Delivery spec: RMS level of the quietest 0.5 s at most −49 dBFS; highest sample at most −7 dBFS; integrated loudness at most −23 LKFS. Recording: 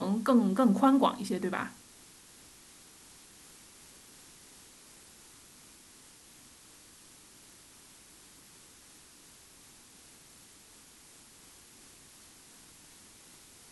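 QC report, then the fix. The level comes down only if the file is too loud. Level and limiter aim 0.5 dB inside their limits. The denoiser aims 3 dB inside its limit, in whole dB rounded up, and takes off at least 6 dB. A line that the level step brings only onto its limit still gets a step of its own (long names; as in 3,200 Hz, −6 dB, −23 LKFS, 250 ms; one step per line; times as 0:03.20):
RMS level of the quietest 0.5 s −56 dBFS: in spec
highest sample −13.0 dBFS: in spec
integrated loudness −27.5 LKFS: in spec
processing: no processing needed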